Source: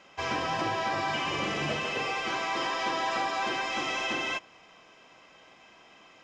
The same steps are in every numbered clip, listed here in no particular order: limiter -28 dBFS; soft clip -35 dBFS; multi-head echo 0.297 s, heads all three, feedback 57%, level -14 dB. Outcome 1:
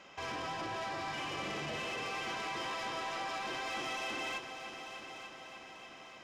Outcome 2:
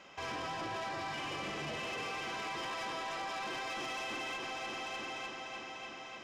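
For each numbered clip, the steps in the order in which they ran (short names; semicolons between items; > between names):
limiter > soft clip > multi-head echo; multi-head echo > limiter > soft clip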